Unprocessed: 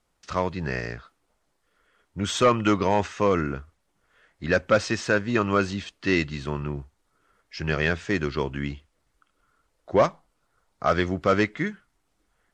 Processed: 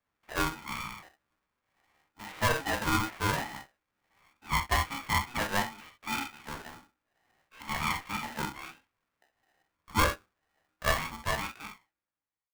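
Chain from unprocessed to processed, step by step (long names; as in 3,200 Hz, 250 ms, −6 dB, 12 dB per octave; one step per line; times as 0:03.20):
fade-out on the ending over 1.73 s
single-sideband voice off tune −59 Hz 440–2,200 Hz
double-tracking delay 15 ms −4.5 dB
on a send at −1.5 dB: convolution reverb, pre-delay 6 ms
on the sum: ring modulator with a square carrier 550 Hz
level −7.5 dB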